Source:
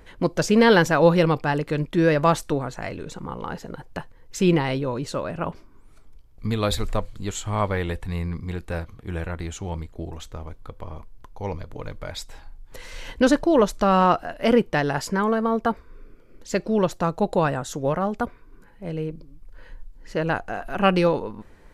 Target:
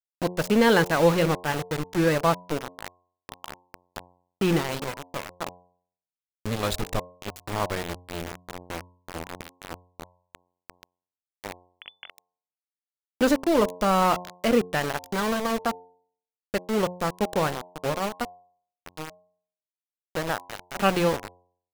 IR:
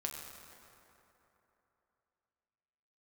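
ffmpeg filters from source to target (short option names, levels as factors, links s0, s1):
-filter_complex "[0:a]aeval=exprs='val(0)*gte(abs(val(0)),0.0794)':c=same,asettb=1/sr,asplit=3[s0][s1][s2];[s0]atrim=end=11.654[s3];[s1]atrim=start=11.65:end=12.1,asetpts=PTS-STARTPTS,afade=t=in:d=0.004:c=qsin,afade=t=out:st=0.446:d=0.004:c=qsin,lowpass=f=3000:t=q:w=0.5098,lowpass=f=3000:t=q:w=0.6013,lowpass=f=3000:t=q:w=0.9,lowpass=f=3000:t=q:w=2.563,afreqshift=-3500[s4];[s2]atrim=start=12.096[s5];[s3][s4]acrossfade=d=0.004:c1=hsin:c2=qsin[s6];[s6][s5]acrossfade=d=0.004:c1=qsin:c2=hsin,bandreject=f=89.51:t=h:w=4,bandreject=f=179.02:t=h:w=4,bandreject=f=268.53:t=h:w=4,bandreject=f=358.04:t=h:w=4,bandreject=f=447.55:t=h:w=4,bandreject=f=537.06:t=h:w=4,bandreject=f=626.57:t=h:w=4,bandreject=f=716.08:t=h:w=4,bandreject=f=805.59:t=h:w=4,bandreject=f=895.1:t=h:w=4,bandreject=f=984.61:t=h:w=4,bandreject=f=1074.12:t=h:w=4,volume=0.708"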